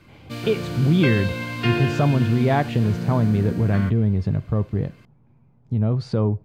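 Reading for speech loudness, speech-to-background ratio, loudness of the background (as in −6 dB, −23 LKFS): −22.0 LKFS, 6.0 dB, −28.0 LKFS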